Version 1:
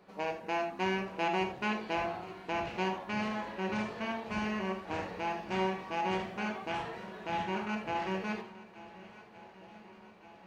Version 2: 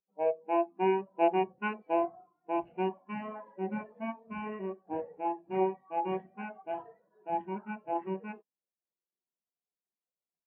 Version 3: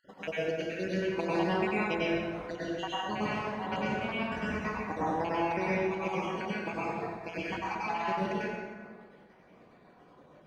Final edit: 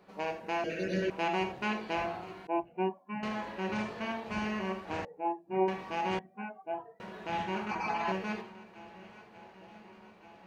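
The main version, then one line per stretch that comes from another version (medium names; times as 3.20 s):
1
0.64–1.10 s: from 3
2.47–3.23 s: from 2
5.05–5.68 s: from 2
6.19–7.00 s: from 2
7.71–8.12 s: from 3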